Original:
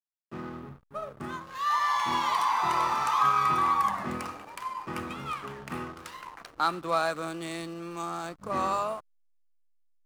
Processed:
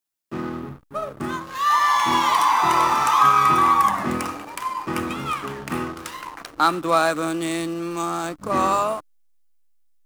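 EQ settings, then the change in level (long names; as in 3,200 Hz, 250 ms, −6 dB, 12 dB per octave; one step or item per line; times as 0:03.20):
parametric band 300 Hz +7 dB 0.37 octaves
high-shelf EQ 5,700 Hz +5.5 dB
dynamic equaliser 4,400 Hz, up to −5 dB, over −56 dBFS, Q 6.6
+8.0 dB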